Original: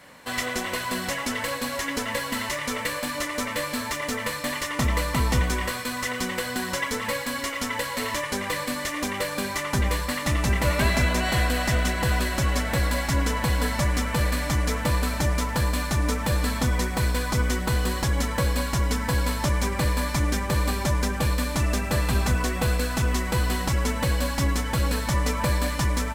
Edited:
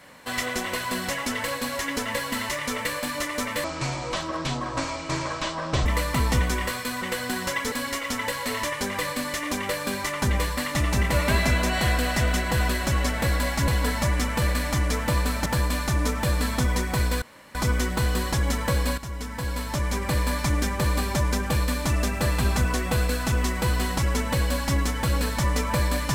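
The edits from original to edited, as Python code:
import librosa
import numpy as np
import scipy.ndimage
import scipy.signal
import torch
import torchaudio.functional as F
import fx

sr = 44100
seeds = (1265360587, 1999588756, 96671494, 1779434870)

y = fx.edit(x, sr, fx.speed_span(start_s=3.64, length_s=1.22, speed=0.55),
    fx.cut(start_s=6.02, length_s=0.26),
    fx.cut(start_s=6.98, length_s=0.25),
    fx.cut(start_s=13.19, length_s=0.26),
    fx.cut(start_s=15.23, length_s=0.26),
    fx.insert_room_tone(at_s=17.25, length_s=0.33),
    fx.fade_in_from(start_s=18.68, length_s=1.29, floor_db=-12.5), tone=tone)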